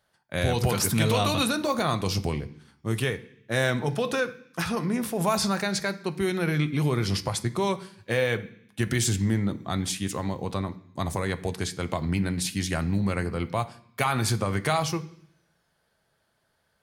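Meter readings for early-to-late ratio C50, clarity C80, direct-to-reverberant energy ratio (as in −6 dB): 17.0 dB, 20.0 dB, 9.0 dB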